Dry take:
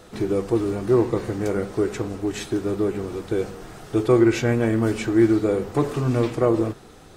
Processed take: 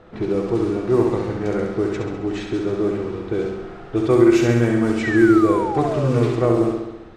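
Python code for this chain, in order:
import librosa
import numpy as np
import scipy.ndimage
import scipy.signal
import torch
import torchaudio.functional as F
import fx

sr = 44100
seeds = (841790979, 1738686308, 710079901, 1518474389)

y = fx.room_flutter(x, sr, wall_m=11.5, rt60_s=0.99)
y = fx.spec_paint(y, sr, seeds[0], shape='fall', start_s=5.03, length_s=1.33, low_hz=370.0, high_hz=2000.0, level_db=-26.0)
y = fx.env_lowpass(y, sr, base_hz=2100.0, full_db=-11.0)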